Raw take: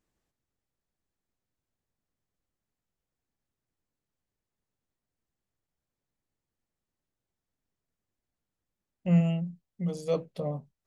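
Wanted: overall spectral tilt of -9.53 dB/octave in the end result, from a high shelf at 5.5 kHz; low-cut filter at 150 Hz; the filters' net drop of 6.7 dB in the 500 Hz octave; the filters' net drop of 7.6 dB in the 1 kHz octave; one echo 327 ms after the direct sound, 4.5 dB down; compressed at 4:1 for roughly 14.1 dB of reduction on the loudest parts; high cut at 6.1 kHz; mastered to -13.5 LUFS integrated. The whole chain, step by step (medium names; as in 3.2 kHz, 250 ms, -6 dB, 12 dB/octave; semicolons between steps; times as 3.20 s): high-pass 150 Hz; low-pass 6.1 kHz; peaking EQ 500 Hz -5 dB; peaking EQ 1 kHz -9 dB; treble shelf 5.5 kHz -6.5 dB; compression 4:1, threshold -38 dBFS; delay 327 ms -4.5 dB; trim +27.5 dB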